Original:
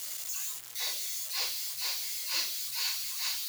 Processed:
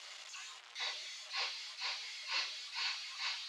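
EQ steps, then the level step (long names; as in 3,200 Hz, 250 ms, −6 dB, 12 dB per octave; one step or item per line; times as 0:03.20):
band-pass filter 740–3,300 Hz
high-frequency loss of the air 60 metres
parametric band 1,700 Hz −2.5 dB
+2.5 dB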